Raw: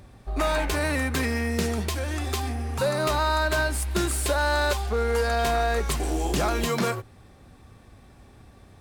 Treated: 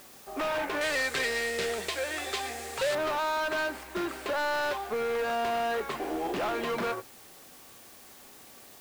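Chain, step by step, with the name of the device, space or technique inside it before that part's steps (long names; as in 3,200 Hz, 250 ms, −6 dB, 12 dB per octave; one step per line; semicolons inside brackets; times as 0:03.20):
aircraft radio (band-pass filter 330–2,400 Hz; hard clipping −27.5 dBFS, distortion −9 dB; white noise bed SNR 20 dB)
0:00.81–0:02.95: octave-band graphic EQ 125/250/500/1,000/2,000/4,000/8,000 Hz +3/−11/+5/−5/+4/+7/+12 dB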